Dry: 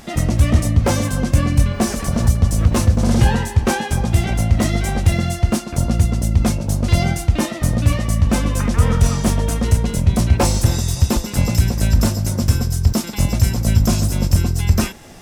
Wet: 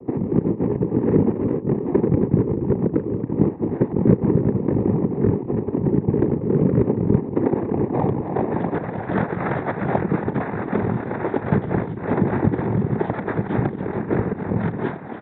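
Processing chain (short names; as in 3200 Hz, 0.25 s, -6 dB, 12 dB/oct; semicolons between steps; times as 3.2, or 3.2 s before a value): bell 330 Hz +9 dB 0.75 oct; limiter -6.5 dBFS, peak gain reduction 5 dB; negative-ratio compressor -19 dBFS, ratio -0.5; formant shift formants +5 st; low-pass sweep 260 Hz -> 1000 Hz, 7.19–9.08; added harmonics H 7 -25 dB, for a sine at -2 dBFS; doubler 34 ms -13 dB; echo 0.278 s -9 dB; noise vocoder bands 6; downsampling 8000 Hz; gain -1 dB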